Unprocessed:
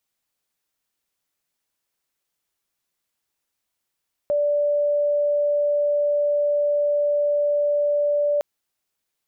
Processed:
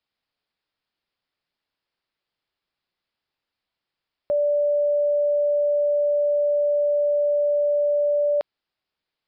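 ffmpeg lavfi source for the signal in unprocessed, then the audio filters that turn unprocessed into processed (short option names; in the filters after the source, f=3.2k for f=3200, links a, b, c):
-f lavfi -i "sine=f=584:d=4.11:r=44100,volume=0.56dB"
-af "aresample=11025,aresample=44100"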